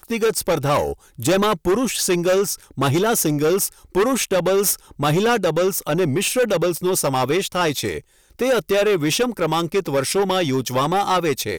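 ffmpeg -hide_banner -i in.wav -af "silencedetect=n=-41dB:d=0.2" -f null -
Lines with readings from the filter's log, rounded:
silence_start: 8.00
silence_end: 8.31 | silence_duration: 0.30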